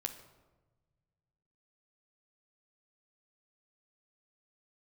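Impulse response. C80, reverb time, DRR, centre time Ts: 12.5 dB, 1.2 s, 6.0 dB, 14 ms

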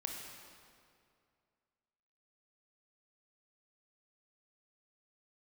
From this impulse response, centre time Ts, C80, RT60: 84 ms, 3.5 dB, 2.3 s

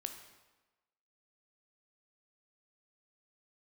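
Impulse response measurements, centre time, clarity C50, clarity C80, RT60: 21 ms, 8.0 dB, 9.5 dB, 1.2 s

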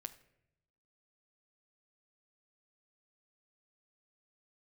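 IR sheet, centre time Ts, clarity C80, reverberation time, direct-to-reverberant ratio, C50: 5 ms, 18.5 dB, 0.80 s, 10.5 dB, 15.5 dB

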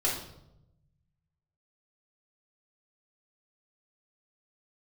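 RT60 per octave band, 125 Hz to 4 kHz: 1.8, 1.2, 0.95, 0.75, 0.60, 0.60 seconds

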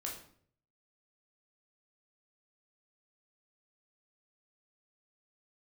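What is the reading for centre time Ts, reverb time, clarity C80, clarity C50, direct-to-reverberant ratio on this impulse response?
31 ms, 0.60 s, 10.0 dB, 5.5 dB, −2.0 dB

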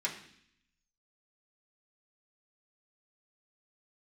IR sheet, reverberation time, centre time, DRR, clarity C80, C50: 0.65 s, 21 ms, −5.0 dB, 11.5 dB, 9.0 dB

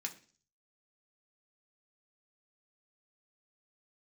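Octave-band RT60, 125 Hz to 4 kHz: 0.65, 0.50, 0.45, 0.35, 0.40, 0.55 seconds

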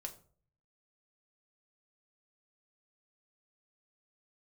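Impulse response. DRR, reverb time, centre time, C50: 3.0 dB, 0.45 s, 9 ms, 14.0 dB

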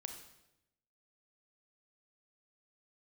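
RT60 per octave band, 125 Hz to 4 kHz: 1.1, 1.0, 0.95, 0.80, 0.80, 0.80 seconds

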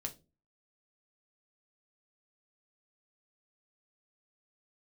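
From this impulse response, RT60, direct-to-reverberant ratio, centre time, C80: 0.30 s, 3.5 dB, 8 ms, 24.0 dB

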